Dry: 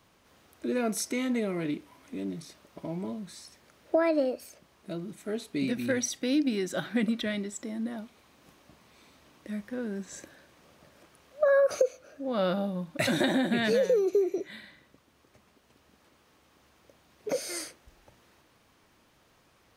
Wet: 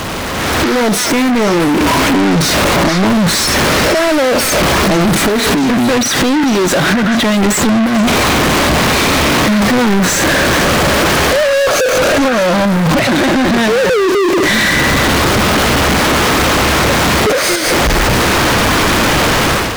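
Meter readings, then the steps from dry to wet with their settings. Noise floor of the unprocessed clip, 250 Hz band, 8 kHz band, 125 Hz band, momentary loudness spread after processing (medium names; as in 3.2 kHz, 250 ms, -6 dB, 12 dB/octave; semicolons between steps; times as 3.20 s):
-65 dBFS, +20.0 dB, +24.5 dB, +26.0 dB, 1 LU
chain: jump at every zero crossing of -28 dBFS; inverted gate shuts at -22 dBFS, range -25 dB; treble shelf 11 kHz +12 dB; compression, threshold -37 dBFS, peak gain reduction 12.5 dB; tilt EQ -3.5 dB/octave; overdrive pedal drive 37 dB, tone 3.6 kHz, clips at -24.5 dBFS; repeats whose band climbs or falls 222 ms, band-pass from 1.7 kHz, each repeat 1.4 oct, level -0.5 dB; waveshaping leveller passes 3; level rider gain up to 9.5 dB; trim +3 dB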